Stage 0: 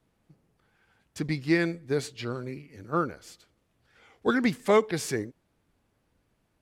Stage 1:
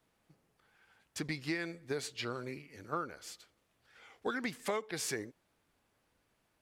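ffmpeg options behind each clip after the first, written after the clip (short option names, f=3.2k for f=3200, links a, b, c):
-af "lowshelf=f=400:g=-10.5,acompressor=threshold=-34dB:ratio=6,volume=1dB"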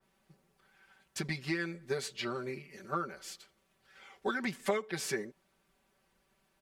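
-af "aecho=1:1:5.2:0.93,adynamicequalizer=threshold=0.00355:dfrequency=3200:dqfactor=0.7:tfrequency=3200:tqfactor=0.7:attack=5:release=100:ratio=0.375:range=2.5:mode=cutabove:tftype=highshelf"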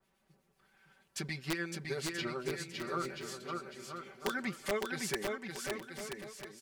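-filter_complex "[0:a]acrossover=split=2000[a][b];[a]aeval=exprs='val(0)*(1-0.5/2+0.5/2*cos(2*PI*8*n/s))':c=same[c];[b]aeval=exprs='val(0)*(1-0.5/2-0.5/2*cos(2*PI*8*n/s))':c=same[d];[c][d]amix=inputs=2:normalize=0,aeval=exprs='(mod(16.8*val(0)+1,2)-1)/16.8':c=same,aecho=1:1:560|980|1295|1531|1708:0.631|0.398|0.251|0.158|0.1"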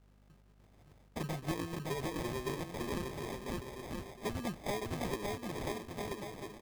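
-filter_complex "[0:a]acrossover=split=160[a][b];[b]acompressor=threshold=-37dB:ratio=6[c];[a][c]amix=inputs=2:normalize=0,aeval=exprs='val(0)+0.000501*(sin(2*PI*50*n/s)+sin(2*PI*2*50*n/s)/2+sin(2*PI*3*50*n/s)/3+sin(2*PI*4*50*n/s)/4+sin(2*PI*5*50*n/s)/5)':c=same,acrusher=samples=31:mix=1:aa=0.000001,volume=3dB"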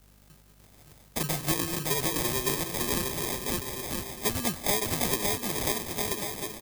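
-filter_complex "[0:a]aecho=1:1:193:0.224,acrossover=split=280[a][b];[b]crystalizer=i=4:c=0[c];[a][c]amix=inputs=2:normalize=0,volume=5.5dB"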